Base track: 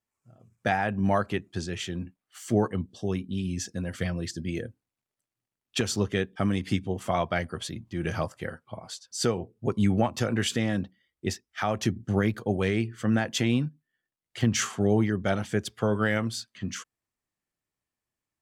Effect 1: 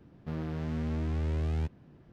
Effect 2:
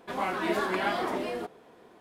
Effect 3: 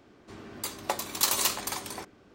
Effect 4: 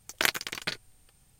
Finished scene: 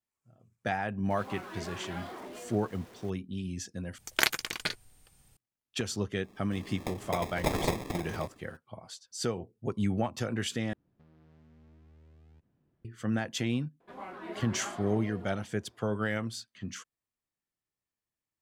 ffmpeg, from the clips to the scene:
ffmpeg -i bed.wav -i cue0.wav -i cue1.wav -i cue2.wav -i cue3.wav -filter_complex "[2:a]asplit=2[link_01][link_02];[0:a]volume=-6dB[link_03];[link_01]aeval=exprs='val(0)+0.5*0.02*sgn(val(0))':channel_layout=same[link_04];[3:a]acrusher=samples=30:mix=1:aa=0.000001[link_05];[1:a]acompressor=threshold=-38dB:ratio=6:attack=3.2:release=140:knee=1:detection=peak[link_06];[link_02]highshelf=frequency=2700:gain=-9.5[link_07];[link_03]asplit=3[link_08][link_09][link_10];[link_08]atrim=end=3.984[link_11];[4:a]atrim=end=1.39[link_12];[link_09]atrim=start=5.366:end=10.734[link_13];[link_06]atrim=end=2.12,asetpts=PTS-STARTPTS,volume=-17.5dB[link_14];[link_10]atrim=start=12.846[link_15];[link_04]atrim=end=2,asetpts=PTS-STARTPTS,volume=-15dB,afade=type=in:duration=0.004:curve=hsin,afade=type=out:start_time=1.996:duration=0.004:curve=hsin,adelay=1100[link_16];[link_05]atrim=end=2.34,asetpts=PTS-STARTPTS,volume=-3dB,afade=type=in:duration=0.004:curve=hsin,afade=type=out:start_time=2.336:duration=0.004:curve=hsin,adelay=6230[link_17];[link_07]atrim=end=2,asetpts=PTS-STARTPTS,volume=-12dB,afade=type=in:duration=0.004:curve=hsin,afade=type=out:start_time=1.996:duration=0.004:curve=hsin,adelay=608580S[link_18];[link_11][link_12]acrossfade=duration=0.004:curve1=hsin:curve2=hsin[link_19];[link_19][link_13]acrossfade=duration=0.004:curve1=hsin:curve2=hsin[link_20];[link_20][link_14]acrossfade=duration=0.004:curve1=hsin:curve2=hsin[link_21];[link_21][link_15]acrossfade=duration=0.004:curve1=hsin:curve2=hsin[link_22];[link_22][link_16][link_17][link_18]amix=inputs=4:normalize=0" out.wav

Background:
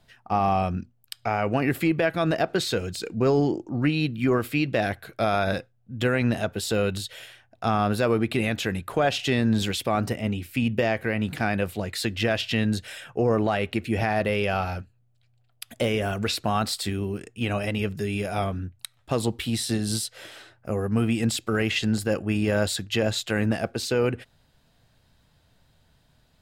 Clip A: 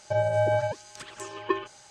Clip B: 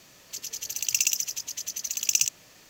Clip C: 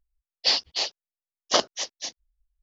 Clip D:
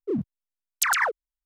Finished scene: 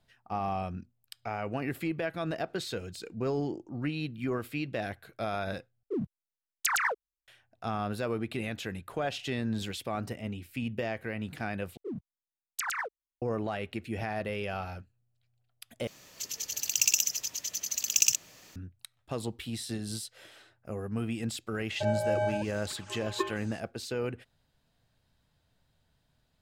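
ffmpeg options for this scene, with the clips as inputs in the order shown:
ffmpeg -i bed.wav -i cue0.wav -i cue1.wav -i cue2.wav -i cue3.wav -filter_complex "[4:a]asplit=2[link_01][link_02];[0:a]volume=-10dB,asplit=4[link_03][link_04][link_05][link_06];[link_03]atrim=end=5.834[link_07];[link_01]atrim=end=1.45,asetpts=PTS-STARTPTS,volume=-5.5dB[link_08];[link_04]atrim=start=7.276:end=11.774[link_09];[link_02]atrim=end=1.45,asetpts=PTS-STARTPTS,volume=-11dB[link_10];[link_05]atrim=start=13.216:end=15.874[link_11];[2:a]atrim=end=2.69,asetpts=PTS-STARTPTS,volume=-1dB[link_12];[link_06]atrim=start=18.556[link_13];[1:a]atrim=end=1.9,asetpts=PTS-STARTPTS,volume=-5dB,afade=type=in:duration=0.004:curve=hsin,afade=type=out:start_time=1.896:duration=0.004:curve=hsin,adelay=21700[link_14];[link_07][link_08]acrossfade=duration=0.004:curve1=hsin:curve2=hsin[link_15];[link_15][link_09]acrossfade=duration=0.004:curve1=hsin:curve2=hsin[link_16];[link_16][link_10]acrossfade=duration=0.004:curve1=hsin:curve2=hsin[link_17];[link_17][link_11]acrossfade=duration=0.004:curve1=hsin:curve2=hsin[link_18];[link_18][link_12]acrossfade=duration=0.004:curve1=hsin:curve2=hsin[link_19];[link_19][link_13]acrossfade=duration=0.004:curve1=hsin:curve2=hsin[link_20];[link_20][link_14]amix=inputs=2:normalize=0" out.wav

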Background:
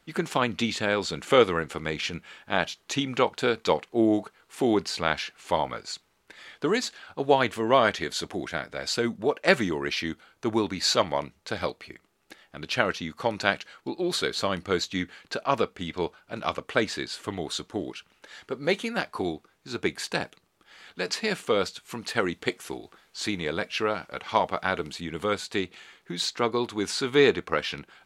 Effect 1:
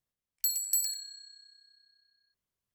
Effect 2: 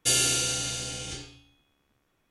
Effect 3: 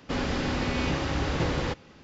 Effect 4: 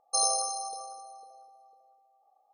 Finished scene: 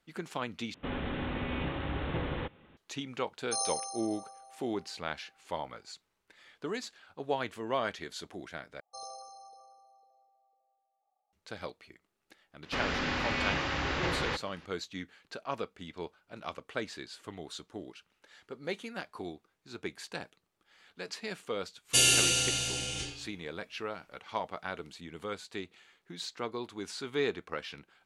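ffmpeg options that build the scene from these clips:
ffmpeg -i bed.wav -i cue0.wav -i cue1.wav -i cue2.wav -i cue3.wav -filter_complex "[3:a]asplit=2[link_01][link_02];[4:a]asplit=2[link_03][link_04];[0:a]volume=-11.5dB[link_05];[link_01]aresample=8000,aresample=44100[link_06];[link_04]lowpass=4300[link_07];[link_02]equalizer=frequency=2000:width_type=o:width=3:gain=11[link_08];[2:a]equalizer=frequency=2700:width_type=o:width=0.36:gain=6.5[link_09];[link_05]asplit=3[link_10][link_11][link_12];[link_10]atrim=end=0.744[link_13];[link_06]atrim=end=2.03,asetpts=PTS-STARTPTS,volume=-7dB[link_14];[link_11]atrim=start=2.766:end=8.804[link_15];[link_07]atrim=end=2.53,asetpts=PTS-STARTPTS,volume=-14dB[link_16];[link_12]atrim=start=11.326[link_17];[link_03]atrim=end=2.53,asetpts=PTS-STARTPTS,volume=-7dB,afade=type=in:duration=0.004:curve=hsin,afade=type=out:start_time=2.526:duration=0.004:curve=hsin,adelay=3380[link_18];[link_08]atrim=end=2.03,asetpts=PTS-STARTPTS,volume=-9dB,afade=type=in:duration=0.004:curve=hsin,afade=type=out:start_time=2.026:duration=0.004:curve=hsin,adelay=12630[link_19];[link_09]atrim=end=2.3,asetpts=PTS-STARTPTS,volume=-1dB,afade=type=in:duration=0.004:curve=hsin,afade=type=out:start_time=2.296:duration=0.004:curve=hsin,adelay=21880[link_20];[link_13][link_14]acrossfade=duration=0.004:curve1=hsin:curve2=hsin[link_21];[link_21][link_15]acrossfade=duration=0.004:curve1=hsin:curve2=hsin[link_22];[link_22][link_16]acrossfade=duration=0.004:curve1=hsin:curve2=hsin[link_23];[link_23][link_17]acrossfade=duration=0.004:curve1=hsin:curve2=hsin[link_24];[link_24][link_18][link_19][link_20]amix=inputs=4:normalize=0" out.wav

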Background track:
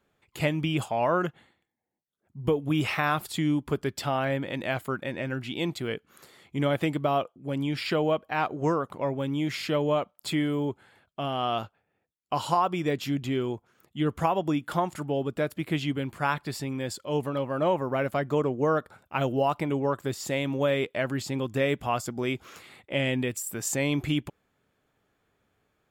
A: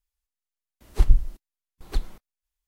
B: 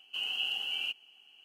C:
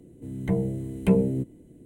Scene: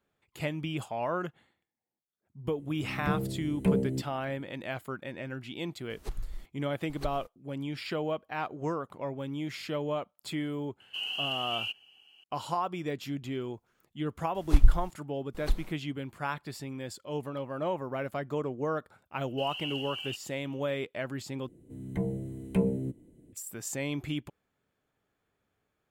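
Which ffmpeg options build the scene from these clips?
ffmpeg -i bed.wav -i cue0.wav -i cue1.wav -i cue2.wav -filter_complex "[3:a]asplit=2[link_01][link_02];[1:a]asplit=2[link_03][link_04];[2:a]asplit=2[link_05][link_06];[0:a]volume=-7dB[link_07];[link_03]acompressor=threshold=-25dB:ratio=6:attack=3.2:release=140:knee=1:detection=peak[link_08];[link_07]asplit=2[link_09][link_10];[link_09]atrim=end=21.484[link_11];[link_02]atrim=end=1.85,asetpts=PTS-STARTPTS,volume=-6.5dB[link_12];[link_10]atrim=start=23.326[link_13];[link_01]atrim=end=1.85,asetpts=PTS-STARTPTS,volume=-5.5dB,afade=type=in:duration=0.004:curve=hsin,afade=type=out:start_time=1.846:duration=0.004:curve=hsin,adelay=2580[link_14];[link_08]atrim=end=2.67,asetpts=PTS-STARTPTS,volume=-5.5dB,afade=type=in:duration=0.004:curve=hsin,afade=type=out:start_time=2.666:duration=0.004:curve=hsin,adelay=224469S[link_15];[link_05]atrim=end=1.44,asetpts=PTS-STARTPTS,volume=-0.5dB,afade=type=in:duration=0.004:curve=hsin,afade=type=out:start_time=1.436:duration=0.004:curve=hsin,adelay=10800[link_16];[link_04]atrim=end=2.67,asetpts=PTS-STARTPTS,volume=-2.5dB,afade=type=in:duration=0.004:curve=hsin,afade=type=out:start_time=2.666:duration=0.004:curve=hsin,adelay=13540[link_17];[link_06]atrim=end=1.44,asetpts=PTS-STARTPTS,volume=-5dB,afade=type=in:duration=0.004:curve=hsin,afade=type=out:start_time=1.436:duration=0.004:curve=hsin,adelay=848484S[link_18];[link_11][link_12]acrossfade=duration=0.004:curve1=hsin:curve2=hsin[link_19];[link_19][link_13]acrossfade=duration=0.004:curve1=hsin:curve2=hsin[link_20];[link_20][link_14][link_15][link_16][link_17][link_18]amix=inputs=6:normalize=0" out.wav

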